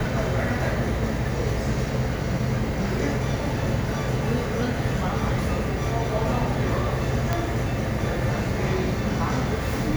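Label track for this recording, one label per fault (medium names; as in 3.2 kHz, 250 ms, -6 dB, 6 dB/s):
7.330000	7.330000	pop -10 dBFS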